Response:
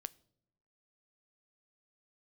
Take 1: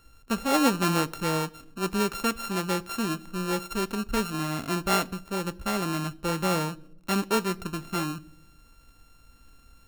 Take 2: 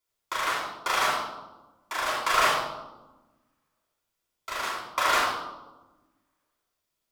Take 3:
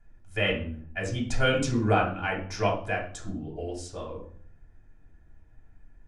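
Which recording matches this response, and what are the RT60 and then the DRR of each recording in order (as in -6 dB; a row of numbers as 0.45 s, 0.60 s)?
1; no single decay rate, 1.1 s, 0.50 s; 16.0 dB, -7.0 dB, -3.0 dB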